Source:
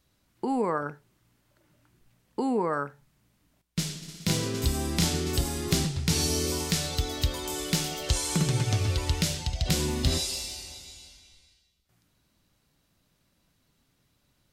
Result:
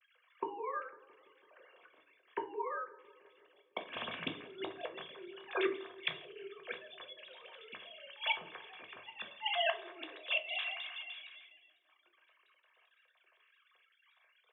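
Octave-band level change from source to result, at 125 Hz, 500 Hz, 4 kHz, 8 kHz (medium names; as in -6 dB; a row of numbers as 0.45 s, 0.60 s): -35.5 dB, -8.5 dB, -9.0 dB, under -40 dB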